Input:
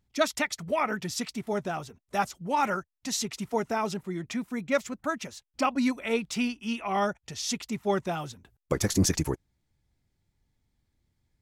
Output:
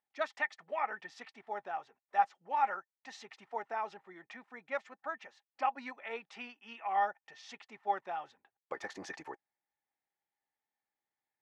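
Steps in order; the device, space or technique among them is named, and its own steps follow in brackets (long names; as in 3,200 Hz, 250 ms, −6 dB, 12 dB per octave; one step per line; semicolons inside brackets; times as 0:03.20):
tin-can telephone (band-pass filter 660–2,300 Hz; hollow resonant body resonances 810/1,800 Hz, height 11 dB, ringing for 45 ms)
level −7.5 dB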